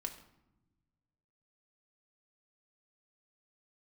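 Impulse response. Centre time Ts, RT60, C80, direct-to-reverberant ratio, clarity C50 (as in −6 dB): 13 ms, 0.90 s, 13.0 dB, 3.0 dB, 11.0 dB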